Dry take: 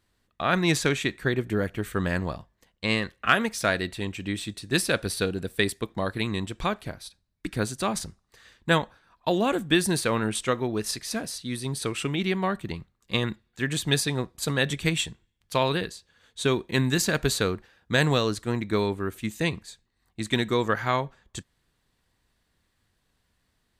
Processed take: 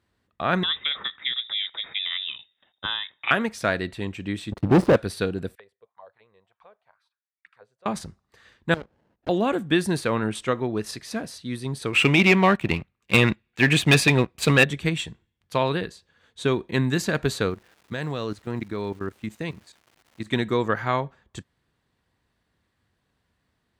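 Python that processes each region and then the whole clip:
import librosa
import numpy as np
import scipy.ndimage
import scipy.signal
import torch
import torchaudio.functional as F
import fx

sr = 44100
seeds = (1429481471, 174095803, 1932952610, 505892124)

y = fx.chain(x, sr, fx.env_lowpass_down(base_hz=1600.0, full_db=-22.0),
    fx.freq_invert(carrier_hz=3700), at=(0.63, 3.31))
y = fx.chain(y, sr, fx.savgol(points=65),
    fx.leveller(passes=5), at=(4.52, 4.96))
y = fx.chain(y, sr, fx.tone_stack(knobs='10-0-10'),
    fx.auto_wah(base_hz=480.0, top_hz=2400.0, q=5.1, full_db=-34.5, direction='down'), at=(5.55, 7.86))
y = fx.chain(y, sr, fx.level_steps(step_db=16),
    fx.running_max(window=33), at=(8.74, 9.29))
y = fx.chain(y, sr, fx.peak_eq(hz=2500.0, db=13.0, octaves=0.55),
    fx.leveller(passes=2),
    fx.clip_hard(threshold_db=-9.5), at=(11.93, 14.64))
y = fx.level_steps(y, sr, step_db=15, at=(17.49, 20.26), fade=0.02)
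y = fx.dmg_crackle(y, sr, seeds[0], per_s=360.0, level_db=-42.0, at=(17.49, 20.26), fade=0.02)
y = scipy.signal.sosfilt(scipy.signal.butter(2, 62.0, 'highpass', fs=sr, output='sos'), y)
y = fx.high_shelf(y, sr, hz=4000.0, db=-10.5)
y = F.gain(torch.from_numpy(y), 1.5).numpy()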